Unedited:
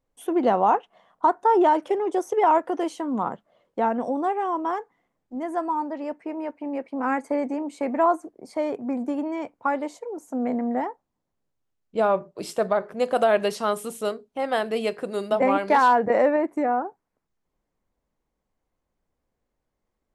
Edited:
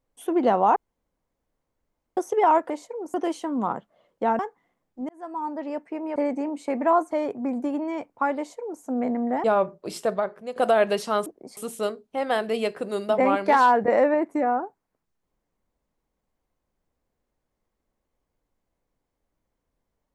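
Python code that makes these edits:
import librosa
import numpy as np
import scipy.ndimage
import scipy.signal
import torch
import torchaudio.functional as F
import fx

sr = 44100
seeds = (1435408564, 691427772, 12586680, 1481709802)

y = fx.edit(x, sr, fx.room_tone_fill(start_s=0.76, length_s=1.41),
    fx.cut(start_s=3.95, length_s=0.78),
    fx.fade_in_span(start_s=5.43, length_s=0.53),
    fx.cut(start_s=6.5, length_s=0.79),
    fx.move(start_s=8.24, length_s=0.31, to_s=13.79),
    fx.duplicate(start_s=9.82, length_s=0.44, to_s=2.7),
    fx.cut(start_s=10.88, length_s=1.09),
    fx.fade_out_to(start_s=12.52, length_s=0.57, floor_db=-12.5), tone=tone)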